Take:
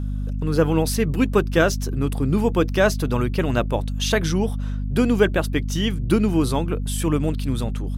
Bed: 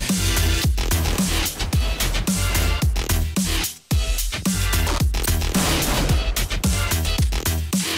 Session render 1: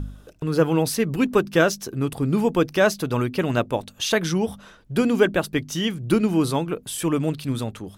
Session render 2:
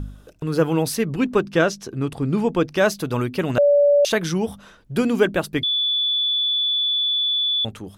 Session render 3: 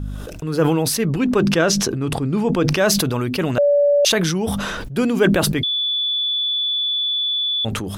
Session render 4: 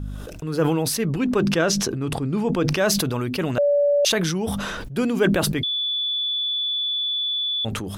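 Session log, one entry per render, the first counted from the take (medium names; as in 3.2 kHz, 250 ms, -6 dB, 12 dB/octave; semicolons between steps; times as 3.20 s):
de-hum 50 Hz, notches 5
1.04–2.77 s: distance through air 50 m; 3.58–4.05 s: bleep 576 Hz -11.5 dBFS; 5.63–7.65 s: bleep 3.46 kHz -18 dBFS
decay stretcher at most 24 dB/s
trim -3.5 dB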